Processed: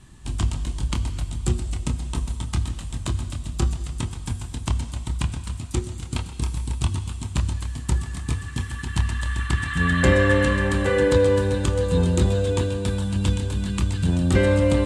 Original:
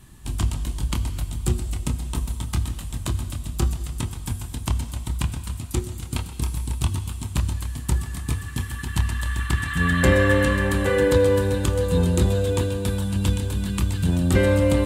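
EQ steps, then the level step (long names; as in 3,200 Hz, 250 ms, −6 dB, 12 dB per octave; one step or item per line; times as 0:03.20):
low-pass filter 9,000 Hz 24 dB per octave
0.0 dB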